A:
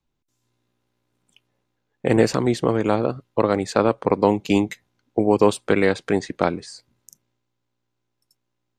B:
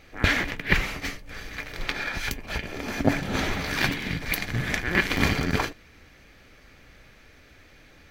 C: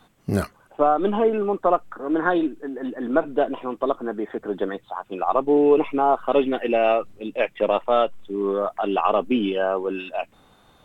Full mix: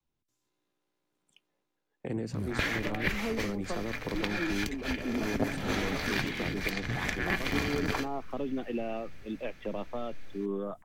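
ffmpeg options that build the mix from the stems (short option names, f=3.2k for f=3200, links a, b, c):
-filter_complex "[0:a]bandreject=f=60:t=h:w=6,bandreject=f=120:t=h:w=6,bandreject=f=180:t=h:w=6,bandreject=f=240:t=h:w=6,volume=-6.5dB[a];[1:a]adelay=2350,volume=-3.5dB[b];[2:a]bass=f=250:g=12,treble=f=4k:g=7,adelay=2050,volume=-10.5dB[c];[a][c]amix=inputs=2:normalize=0,acrossover=split=310[d][e];[e]acompressor=threshold=-36dB:ratio=4[f];[d][f]amix=inputs=2:normalize=0,alimiter=limit=-24dB:level=0:latency=1:release=107,volume=0dB[g];[b][g]amix=inputs=2:normalize=0,acrossover=split=240|7400[h][i][j];[h]acompressor=threshold=-33dB:ratio=4[k];[i]acompressor=threshold=-28dB:ratio=4[l];[j]acompressor=threshold=-51dB:ratio=4[m];[k][l][m]amix=inputs=3:normalize=0"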